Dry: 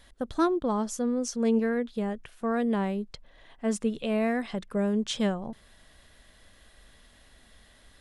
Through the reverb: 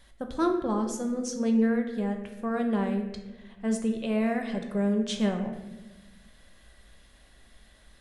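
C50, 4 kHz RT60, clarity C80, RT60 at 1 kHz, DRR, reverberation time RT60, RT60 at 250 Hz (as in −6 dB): 7.0 dB, 0.75 s, 9.0 dB, 0.95 s, 3.5 dB, 1.1 s, 1.7 s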